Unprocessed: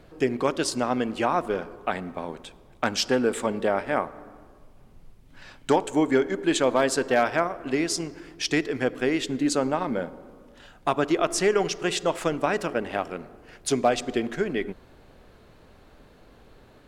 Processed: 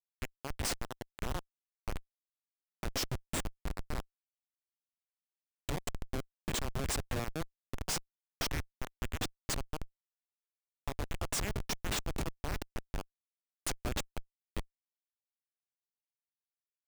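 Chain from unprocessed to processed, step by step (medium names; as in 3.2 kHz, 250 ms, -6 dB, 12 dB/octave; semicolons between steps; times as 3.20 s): differentiator; Schmitt trigger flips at -33 dBFS; trim +8 dB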